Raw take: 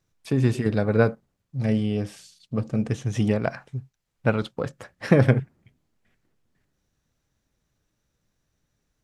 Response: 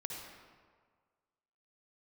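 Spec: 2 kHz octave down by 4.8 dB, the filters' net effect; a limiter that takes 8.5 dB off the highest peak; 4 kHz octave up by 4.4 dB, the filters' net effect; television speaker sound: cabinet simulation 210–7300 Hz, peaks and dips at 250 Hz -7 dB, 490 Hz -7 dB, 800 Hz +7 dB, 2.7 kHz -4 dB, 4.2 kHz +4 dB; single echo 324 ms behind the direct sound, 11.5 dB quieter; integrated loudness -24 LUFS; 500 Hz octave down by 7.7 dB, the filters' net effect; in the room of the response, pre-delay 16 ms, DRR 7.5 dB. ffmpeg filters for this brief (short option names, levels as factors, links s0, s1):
-filter_complex "[0:a]equalizer=f=500:t=o:g=-5.5,equalizer=f=2000:t=o:g=-7.5,equalizer=f=4000:t=o:g=7,alimiter=limit=0.178:level=0:latency=1,aecho=1:1:324:0.266,asplit=2[s0][s1];[1:a]atrim=start_sample=2205,adelay=16[s2];[s1][s2]afir=irnorm=-1:irlink=0,volume=0.447[s3];[s0][s3]amix=inputs=2:normalize=0,highpass=f=210:w=0.5412,highpass=f=210:w=1.3066,equalizer=f=250:t=q:w=4:g=-7,equalizer=f=490:t=q:w=4:g=-7,equalizer=f=800:t=q:w=4:g=7,equalizer=f=2700:t=q:w=4:g=-4,equalizer=f=4200:t=q:w=4:g=4,lowpass=f=7300:w=0.5412,lowpass=f=7300:w=1.3066,volume=3.35"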